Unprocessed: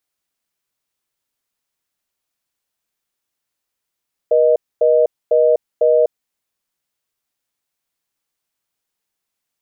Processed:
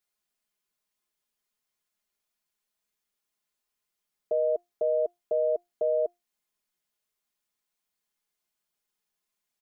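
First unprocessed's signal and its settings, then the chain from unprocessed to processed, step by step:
call progress tone reorder tone, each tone -12.5 dBFS 1.79 s
comb 4.8 ms, depth 73%; limiter -12 dBFS; resonator 350 Hz, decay 0.22 s, harmonics all, mix 60%

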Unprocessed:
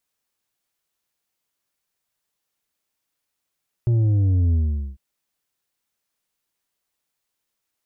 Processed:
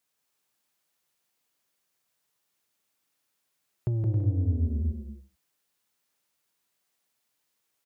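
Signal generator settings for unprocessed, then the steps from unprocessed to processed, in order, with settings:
sub drop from 120 Hz, over 1.10 s, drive 6 dB, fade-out 0.44 s, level -16 dB
HPF 100 Hz 12 dB/oct; compressor, threshold -25 dBFS; on a send: bouncing-ball echo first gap 0.17 s, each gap 0.6×, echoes 5

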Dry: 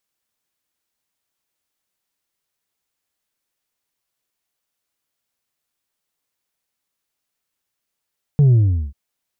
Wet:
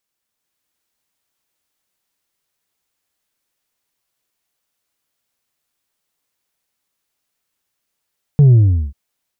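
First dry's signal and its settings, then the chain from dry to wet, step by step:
sub drop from 150 Hz, over 0.54 s, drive 3 dB, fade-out 0.41 s, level -9.5 dB
AGC gain up to 4 dB

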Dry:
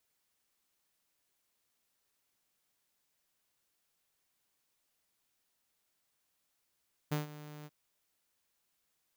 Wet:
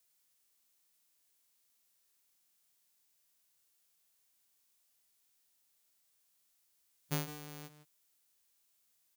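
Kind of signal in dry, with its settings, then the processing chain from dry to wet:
ADSR saw 150 Hz, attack 15 ms, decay 0.138 s, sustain -17 dB, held 0.55 s, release 36 ms -27 dBFS
high shelf 3500 Hz +11 dB; harmonic-percussive split percussive -15 dB; outdoor echo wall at 27 m, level -12 dB

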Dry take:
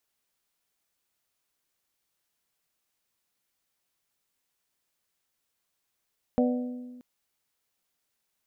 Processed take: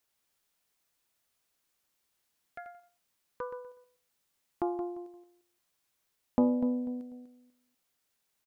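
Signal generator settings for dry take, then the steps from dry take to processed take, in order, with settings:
glass hit bell, length 0.63 s, lowest mode 248 Hz, modes 4, decay 1.53 s, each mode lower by 3.5 dB, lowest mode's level -20.5 dB
feedback echo 0.246 s, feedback 25%, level -9.5 dB; echoes that change speed 0.106 s, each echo +6 st, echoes 3, each echo -6 dB; Doppler distortion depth 0.33 ms

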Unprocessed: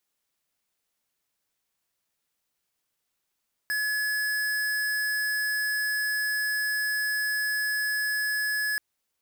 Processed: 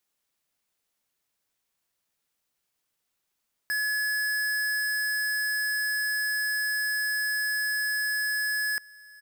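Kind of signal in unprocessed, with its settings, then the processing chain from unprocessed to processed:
tone square 1700 Hz -27.5 dBFS 5.08 s
echo 1.092 s -22.5 dB

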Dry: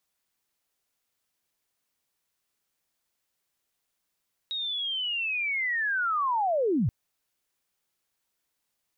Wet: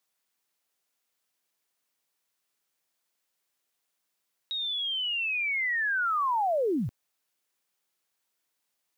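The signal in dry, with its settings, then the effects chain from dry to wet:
chirp linear 3800 Hz -> 92 Hz -29 dBFS -> -21.5 dBFS 2.38 s
block floating point 7-bit; HPF 240 Hz 6 dB/oct

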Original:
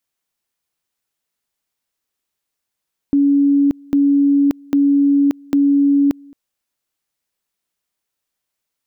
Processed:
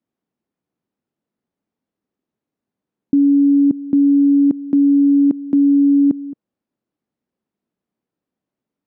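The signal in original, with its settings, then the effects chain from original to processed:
two-level tone 282 Hz -10 dBFS, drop 28 dB, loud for 0.58 s, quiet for 0.22 s, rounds 4
in parallel at +2 dB: negative-ratio compressor -24 dBFS, ratio -1; on the sum: band-pass 230 Hz, Q 1.5

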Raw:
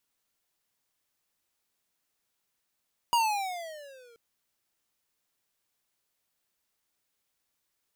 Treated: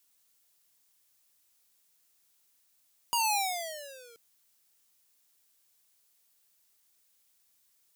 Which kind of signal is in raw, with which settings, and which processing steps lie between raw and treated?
gliding synth tone square, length 1.03 s, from 963 Hz, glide -13 st, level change -34 dB, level -22.5 dB
high shelf 3700 Hz +12 dB; limiter -18 dBFS

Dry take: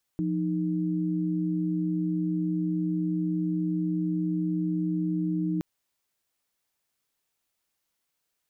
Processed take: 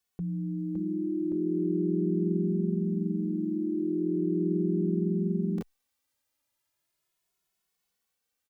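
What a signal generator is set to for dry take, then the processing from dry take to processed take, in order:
chord F3/D#4 sine, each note -27.5 dBFS 5.42 s
echoes that change speed 0.584 s, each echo +2 st, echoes 2; endless flanger 2.3 ms +0.39 Hz

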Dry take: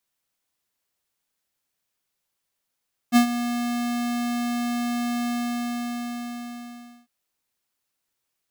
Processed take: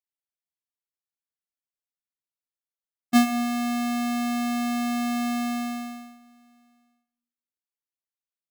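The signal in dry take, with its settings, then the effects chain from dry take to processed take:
ADSR square 240 Hz, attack 42 ms, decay 98 ms, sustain -12.5 dB, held 2.15 s, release 1.8 s -13.5 dBFS
gate -31 dBFS, range -22 dB; digital reverb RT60 0.67 s, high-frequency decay 0.55×, pre-delay 50 ms, DRR 11 dB

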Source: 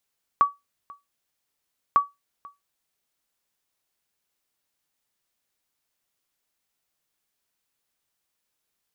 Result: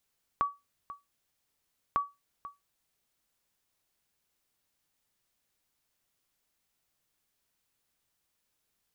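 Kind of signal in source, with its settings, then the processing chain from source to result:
sonar ping 1140 Hz, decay 0.19 s, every 1.55 s, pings 2, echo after 0.49 s, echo -25 dB -9.5 dBFS
low shelf 190 Hz +6.5 dB; compressor 3:1, threshold -24 dBFS; limiter -15 dBFS

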